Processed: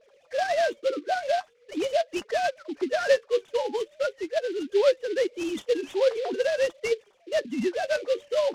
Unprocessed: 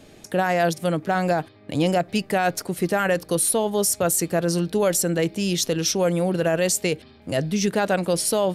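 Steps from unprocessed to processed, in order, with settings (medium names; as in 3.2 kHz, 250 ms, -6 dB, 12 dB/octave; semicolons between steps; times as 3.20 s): formants replaced by sine waves; flange 0.43 Hz, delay 4.4 ms, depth 6.6 ms, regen +49%; delay time shaken by noise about 3 kHz, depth 0.035 ms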